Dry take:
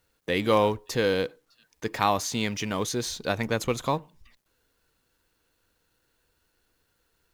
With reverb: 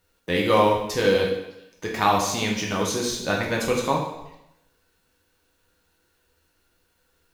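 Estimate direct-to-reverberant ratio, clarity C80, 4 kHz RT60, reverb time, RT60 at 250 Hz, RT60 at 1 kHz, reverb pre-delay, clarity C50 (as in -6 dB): -2.5 dB, 7.0 dB, 0.80 s, 0.85 s, 0.80 s, 0.85 s, 4 ms, 4.0 dB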